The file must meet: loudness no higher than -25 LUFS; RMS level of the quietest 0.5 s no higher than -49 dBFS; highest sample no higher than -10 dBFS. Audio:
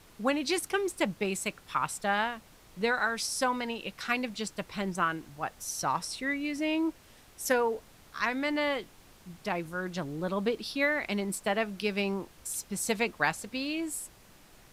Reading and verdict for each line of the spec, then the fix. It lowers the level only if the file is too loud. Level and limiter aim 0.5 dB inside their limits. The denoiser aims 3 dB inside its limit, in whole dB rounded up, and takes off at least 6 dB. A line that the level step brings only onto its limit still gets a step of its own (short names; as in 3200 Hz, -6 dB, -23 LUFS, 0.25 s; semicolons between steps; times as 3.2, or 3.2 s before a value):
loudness -31.5 LUFS: OK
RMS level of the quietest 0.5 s -56 dBFS: OK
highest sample -12.5 dBFS: OK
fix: none